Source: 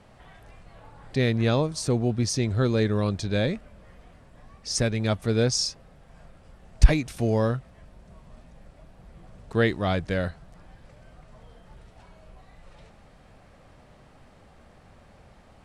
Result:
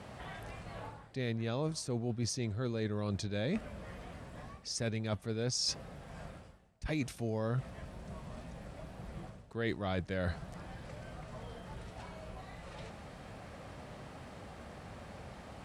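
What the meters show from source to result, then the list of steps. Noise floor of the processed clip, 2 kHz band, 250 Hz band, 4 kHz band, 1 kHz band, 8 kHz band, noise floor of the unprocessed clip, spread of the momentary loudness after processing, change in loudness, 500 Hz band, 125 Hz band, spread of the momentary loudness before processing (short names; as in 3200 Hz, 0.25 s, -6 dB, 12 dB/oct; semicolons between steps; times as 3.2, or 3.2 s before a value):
-53 dBFS, -10.5 dB, -10.5 dB, -8.0 dB, -9.0 dB, -8.5 dB, -54 dBFS, 14 LU, -14.5 dB, -11.5 dB, -11.0 dB, 8 LU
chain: reverse; compressor 16:1, threshold -37 dBFS, peak gain reduction 31 dB; reverse; HPF 61 Hz; gain +5.5 dB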